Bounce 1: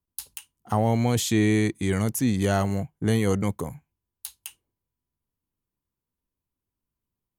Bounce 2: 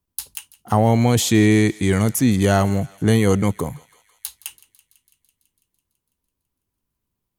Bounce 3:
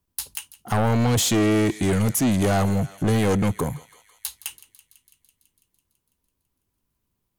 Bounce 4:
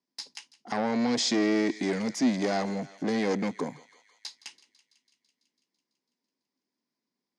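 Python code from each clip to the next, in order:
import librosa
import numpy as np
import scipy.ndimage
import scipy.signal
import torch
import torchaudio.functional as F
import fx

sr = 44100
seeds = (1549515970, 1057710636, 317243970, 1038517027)

y1 = fx.echo_thinned(x, sr, ms=166, feedback_pct=73, hz=900.0, wet_db=-21)
y1 = F.gain(torch.from_numpy(y1), 6.5).numpy()
y2 = 10.0 ** (-19.0 / 20.0) * np.tanh(y1 / 10.0 ** (-19.0 / 20.0))
y2 = F.gain(torch.from_numpy(y2), 2.5).numpy()
y3 = fx.cabinet(y2, sr, low_hz=210.0, low_slope=24, high_hz=6200.0, hz=(250.0, 1300.0, 2000.0, 2900.0, 5000.0), db=(5, -6, 5, -6, 10))
y3 = F.gain(torch.from_numpy(y3), -5.5).numpy()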